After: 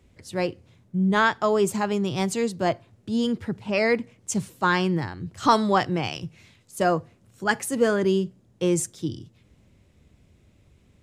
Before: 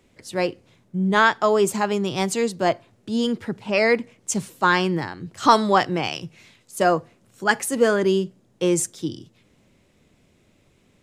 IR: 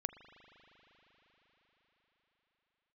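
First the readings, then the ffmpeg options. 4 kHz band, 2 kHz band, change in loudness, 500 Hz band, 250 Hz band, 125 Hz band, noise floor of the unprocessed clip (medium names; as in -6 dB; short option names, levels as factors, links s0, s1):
-4.0 dB, -4.0 dB, -3.0 dB, -3.0 dB, -1.0 dB, +0.5 dB, -61 dBFS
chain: -af "equalizer=f=65:w=0.7:g=15,volume=0.631"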